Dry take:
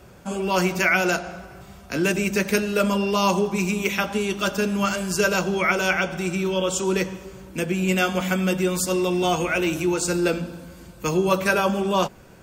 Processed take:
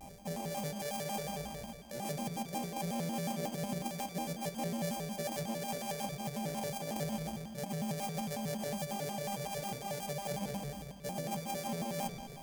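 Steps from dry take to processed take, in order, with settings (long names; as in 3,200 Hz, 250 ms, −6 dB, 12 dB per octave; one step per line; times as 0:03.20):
samples sorted by size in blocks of 64 samples
parametric band 3,400 Hz −11 dB 0.68 octaves
reversed playback
downward compressor 8 to 1, threshold −36 dBFS, peak gain reduction 20 dB
reversed playback
phaser with its sweep stopped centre 350 Hz, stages 6
on a send: bucket-brigade delay 95 ms, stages 4,096, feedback 66%, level −10 dB
on the sum: pitch modulation by a square or saw wave square 5.5 Hz, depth 250 cents
level +2 dB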